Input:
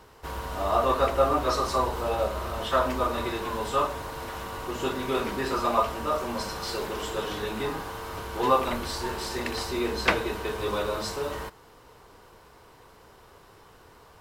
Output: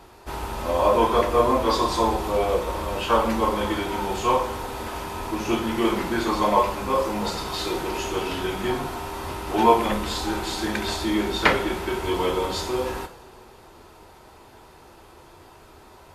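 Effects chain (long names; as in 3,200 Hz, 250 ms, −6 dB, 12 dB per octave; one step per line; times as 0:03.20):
speed change −12%
coupled-rooms reverb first 0.33 s, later 2.2 s, from −18 dB, DRR 5.5 dB
level +3.5 dB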